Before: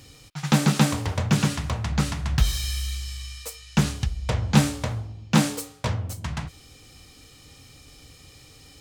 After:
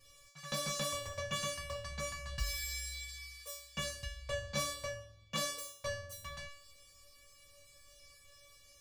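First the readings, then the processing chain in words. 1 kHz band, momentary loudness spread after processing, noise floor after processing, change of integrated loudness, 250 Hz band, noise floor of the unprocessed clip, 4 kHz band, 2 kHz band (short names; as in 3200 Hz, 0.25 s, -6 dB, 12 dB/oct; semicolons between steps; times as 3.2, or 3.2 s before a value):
-12.5 dB, 22 LU, -62 dBFS, -14.5 dB, -26.5 dB, -51 dBFS, -9.0 dB, -9.5 dB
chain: resonator 570 Hz, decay 0.5 s, mix 100%; gain +10.5 dB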